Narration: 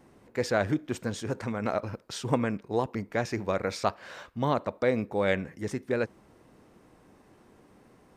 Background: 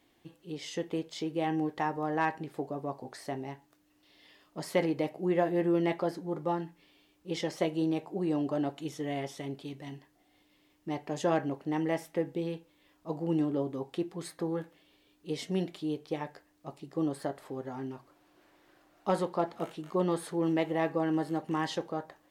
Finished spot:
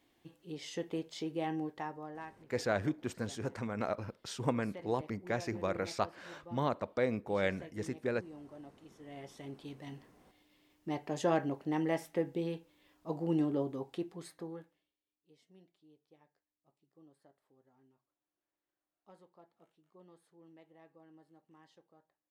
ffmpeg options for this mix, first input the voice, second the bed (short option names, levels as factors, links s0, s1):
-filter_complex "[0:a]adelay=2150,volume=0.501[s0];[1:a]volume=5.01,afade=t=out:st=1.31:d=0.99:silence=0.158489,afade=t=in:st=8.98:d=1.12:silence=0.125893,afade=t=out:st=13.56:d=1.38:silence=0.0375837[s1];[s0][s1]amix=inputs=2:normalize=0"